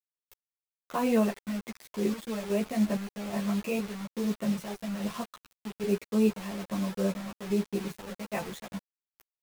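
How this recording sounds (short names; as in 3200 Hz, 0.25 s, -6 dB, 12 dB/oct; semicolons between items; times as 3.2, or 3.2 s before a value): chopped level 1.2 Hz, depth 60%, duty 55%; a quantiser's noise floor 6-bit, dither none; a shimmering, thickened sound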